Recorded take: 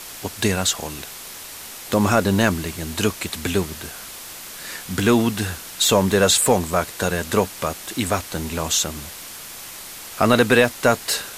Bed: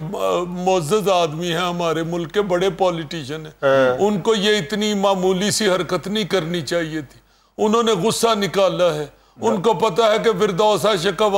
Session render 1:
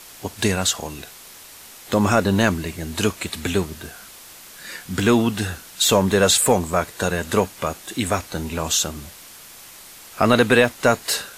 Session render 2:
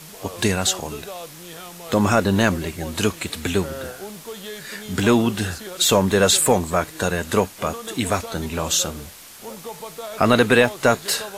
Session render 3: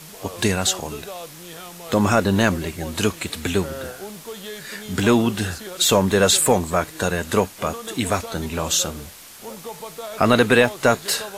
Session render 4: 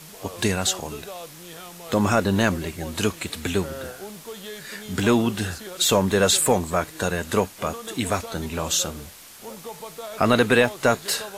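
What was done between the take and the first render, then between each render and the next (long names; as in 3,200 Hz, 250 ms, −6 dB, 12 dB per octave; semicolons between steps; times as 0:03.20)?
noise reduction from a noise print 6 dB
mix in bed −18.5 dB
no processing that can be heard
level −2.5 dB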